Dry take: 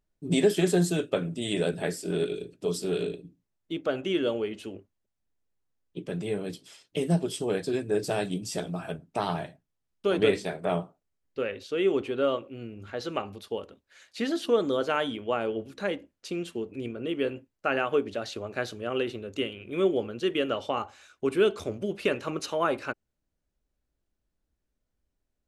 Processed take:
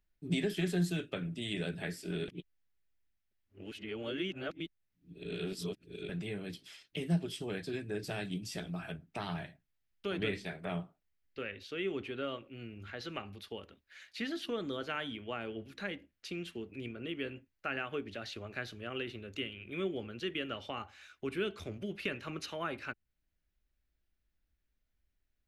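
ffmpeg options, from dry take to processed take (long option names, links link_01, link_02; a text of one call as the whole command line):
ffmpeg -i in.wav -filter_complex "[0:a]asplit=3[link_01][link_02][link_03];[link_01]atrim=end=2.282[link_04];[link_02]atrim=start=2.278:end=6.092,asetpts=PTS-STARTPTS,areverse[link_05];[link_03]atrim=start=6.088[link_06];[link_04][link_05]acrossfade=duration=0.004:curve1=hsin:curve2=hsin[link_07];[link_07][link_06]acrossfade=duration=0.004:curve1=hsin:curve2=hsin,equalizer=frequency=125:width_type=o:width=1:gain=-5,equalizer=frequency=250:width_type=o:width=1:gain=-5,equalizer=frequency=500:width_type=o:width=1:gain=-8,equalizer=frequency=1000:width_type=o:width=1:gain=-6,equalizer=frequency=2000:width_type=o:width=1:gain=4,equalizer=frequency=8000:width_type=o:width=1:gain=-9,acrossover=split=260[link_08][link_09];[link_09]acompressor=threshold=-49dB:ratio=1.5[link_10];[link_08][link_10]amix=inputs=2:normalize=0,volume=1dB" out.wav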